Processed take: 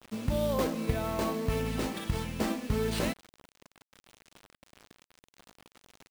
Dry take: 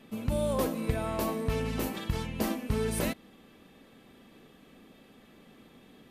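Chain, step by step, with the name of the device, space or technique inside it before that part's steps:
early 8-bit sampler (sample-rate reduction 13,000 Hz, jitter 0%; bit reduction 8 bits)

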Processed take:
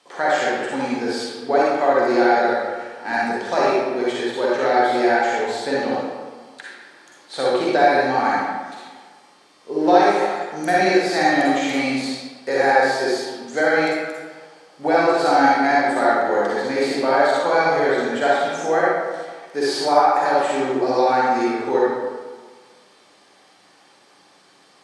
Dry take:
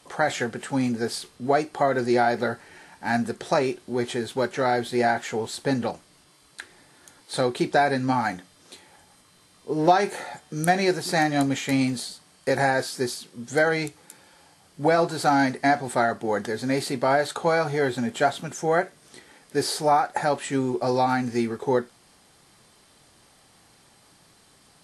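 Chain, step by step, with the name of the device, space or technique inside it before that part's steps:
supermarket ceiling speaker (band-pass filter 300–6,300 Hz; convolution reverb RT60 1.5 s, pre-delay 40 ms, DRR −6.5 dB)
level −1 dB

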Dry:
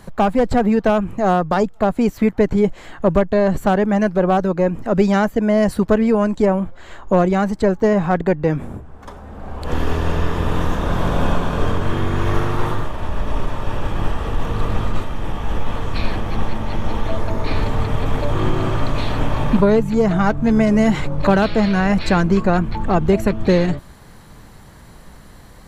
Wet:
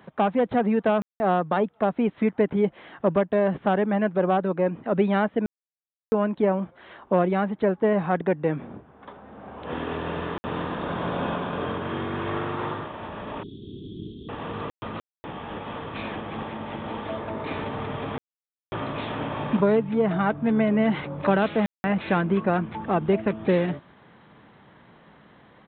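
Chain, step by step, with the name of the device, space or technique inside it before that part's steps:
call with lost packets (high-pass filter 170 Hz 12 dB per octave; downsampling to 8,000 Hz; dropped packets of 60 ms bursts)
0:13.43–0:14.29: Chebyshev band-stop filter 400–3,400 Hz, order 5
level −5.5 dB

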